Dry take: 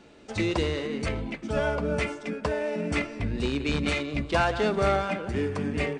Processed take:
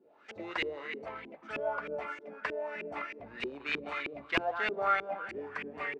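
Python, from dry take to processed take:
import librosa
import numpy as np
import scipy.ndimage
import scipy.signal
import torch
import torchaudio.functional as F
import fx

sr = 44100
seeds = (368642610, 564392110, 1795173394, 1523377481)

y = np.diff(x, prepend=0.0)
y = fx.filter_lfo_lowpass(y, sr, shape='saw_up', hz=3.2, low_hz=340.0, high_hz=2400.0, q=4.0)
y = F.gain(torch.from_numpy(y), 8.0).numpy()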